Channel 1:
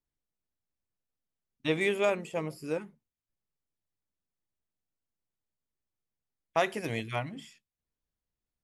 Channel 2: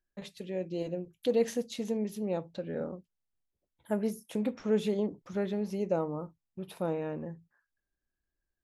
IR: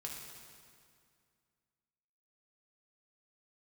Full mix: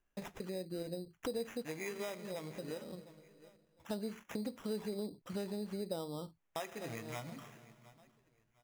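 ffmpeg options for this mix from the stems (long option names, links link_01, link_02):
-filter_complex "[0:a]volume=-7dB,asplit=4[link_01][link_02][link_03][link_04];[link_02]volume=-8dB[link_05];[link_03]volume=-22.5dB[link_06];[1:a]volume=3dB[link_07];[link_04]apad=whole_len=380991[link_08];[link_07][link_08]sidechaincompress=threshold=-54dB:ratio=8:attack=16:release=205[link_09];[2:a]atrim=start_sample=2205[link_10];[link_05][link_10]afir=irnorm=-1:irlink=0[link_11];[link_06]aecho=0:1:709|1418|2127|2836:1|0.26|0.0676|0.0176[link_12];[link_01][link_09][link_11][link_12]amix=inputs=4:normalize=0,acrusher=samples=10:mix=1:aa=0.000001,acompressor=threshold=-41dB:ratio=3"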